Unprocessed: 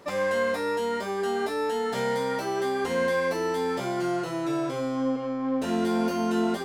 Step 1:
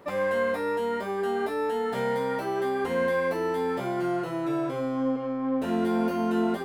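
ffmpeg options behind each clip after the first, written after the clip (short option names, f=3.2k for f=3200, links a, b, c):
-af "equalizer=f=6k:w=0.82:g=-11"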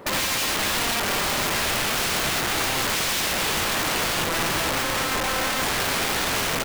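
-filter_complex "[0:a]asplit=5[a][b][c][d][e];[b]adelay=413,afreqshift=-38,volume=-10.5dB[f];[c]adelay=826,afreqshift=-76,volume=-18.2dB[g];[d]adelay=1239,afreqshift=-114,volume=-26dB[h];[e]adelay=1652,afreqshift=-152,volume=-33.7dB[i];[a][f][g][h][i]amix=inputs=5:normalize=0,aeval=exprs='(mod(25.1*val(0)+1,2)-1)/25.1':c=same,volume=8.5dB"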